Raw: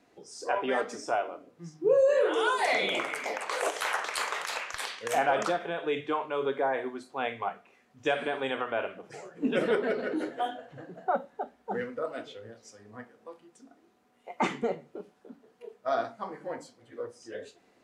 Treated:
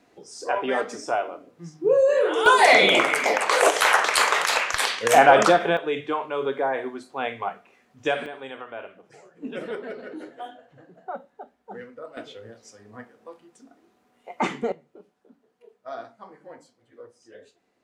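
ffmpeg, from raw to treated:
ffmpeg -i in.wav -af "asetnsamples=nb_out_samples=441:pad=0,asendcmd='2.46 volume volume 12dB;5.77 volume volume 3.5dB;8.26 volume volume -6dB;12.17 volume volume 3dB;14.72 volume volume -7dB',volume=4dB" out.wav

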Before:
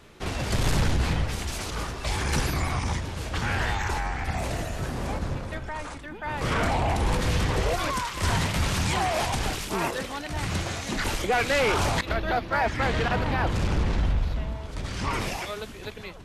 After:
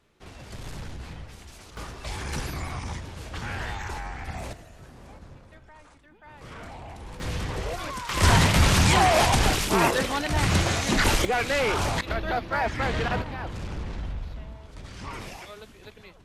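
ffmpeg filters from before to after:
ffmpeg -i in.wav -af "asetnsamples=nb_out_samples=441:pad=0,asendcmd='1.77 volume volume -6dB;4.53 volume volume -16.5dB;7.2 volume volume -6dB;8.09 volume volume 6.5dB;11.25 volume volume -1.5dB;13.22 volume volume -9dB',volume=-14.5dB" out.wav

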